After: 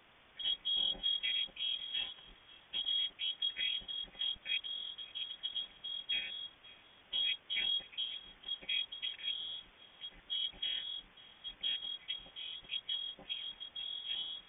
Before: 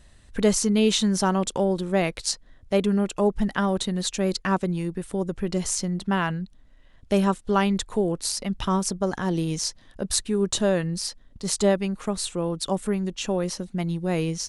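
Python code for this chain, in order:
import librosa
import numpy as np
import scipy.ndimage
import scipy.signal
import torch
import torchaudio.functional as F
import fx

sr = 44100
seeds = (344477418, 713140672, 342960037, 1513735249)

p1 = fx.chord_vocoder(x, sr, chord='major triad', root=52)
p2 = fx.low_shelf(p1, sr, hz=320.0, db=-12.0)
p3 = fx.level_steps(p2, sr, step_db=16)
p4 = p2 + (p3 * 10.0 ** (-0.5 / 20.0))
p5 = fx.fixed_phaser(p4, sr, hz=2200.0, stages=6)
p6 = fx.quant_dither(p5, sr, seeds[0], bits=8, dither='triangular')
p7 = p6 + fx.echo_single(p6, sr, ms=544, db=-21.0, dry=0)
p8 = (np.kron(scipy.signal.resample_poly(p7, 1, 4), np.eye(4)[0]) * 4)[:len(p7)]
p9 = fx.freq_invert(p8, sr, carrier_hz=3500)
y = p9 * 10.0 ** (-8.0 / 20.0)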